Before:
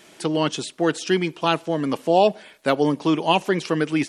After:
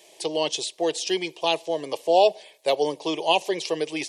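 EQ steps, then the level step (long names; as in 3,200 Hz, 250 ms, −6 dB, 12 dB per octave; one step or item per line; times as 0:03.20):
high-pass filter 270 Hz 12 dB per octave
phaser with its sweep stopped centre 580 Hz, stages 4
dynamic equaliser 4,400 Hz, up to +5 dB, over −43 dBFS, Q 0.76
0.0 dB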